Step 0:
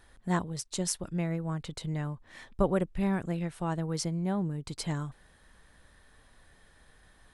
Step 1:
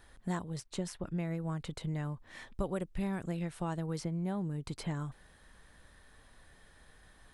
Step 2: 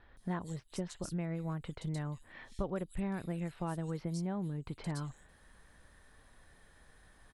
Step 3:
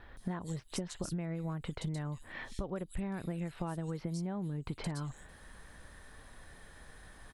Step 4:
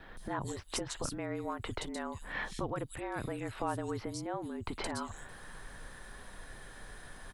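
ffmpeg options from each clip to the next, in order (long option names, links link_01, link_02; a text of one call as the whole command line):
ffmpeg -i in.wav -filter_complex "[0:a]acrossover=split=3200|7500[link_01][link_02][link_03];[link_01]acompressor=threshold=-32dB:ratio=4[link_04];[link_02]acompressor=threshold=-57dB:ratio=4[link_05];[link_03]acompressor=threshold=-54dB:ratio=4[link_06];[link_04][link_05][link_06]amix=inputs=3:normalize=0" out.wav
ffmpeg -i in.wav -filter_complex "[0:a]acrossover=split=3600[link_01][link_02];[link_02]adelay=170[link_03];[link_01][link_03]amix=inputs=2:normalize=0,volume=-1.5dB" out.wav
ffmpeg -i in.wav -af "acompressor=threshold=-41dB:ratio=10,volume=7.5dB" out.wav
ffmpeg -i in.wav -af "afftfilt=real='re*lt(hypot(re,im),0.1)':imag='im*lt(hypot(re,im),0.1)':win_size=1024:overlap=0.75,afreqshift=-40,adynamicequalizer=threshold=0.00158:dfrequency=1100:dqfactor=1.2:tfrequency=1100:tqfactor=1.2:attack=5:release=100:ratio=0.375:range=2:mode=boostabove:tftype=bell,volume=5dB" out.wav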